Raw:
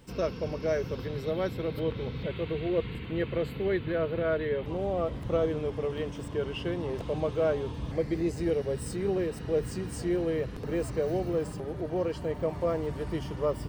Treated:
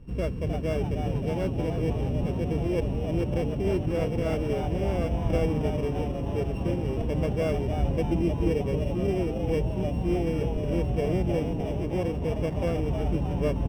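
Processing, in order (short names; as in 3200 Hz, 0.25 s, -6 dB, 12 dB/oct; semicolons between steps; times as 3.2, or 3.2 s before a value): sample sorter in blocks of 16 samples; tilt -4 dB/oct; frequency-shifting echo 0.31 s, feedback 52%, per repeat +120 Hz, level -7.5 dB; gain -4.5 dB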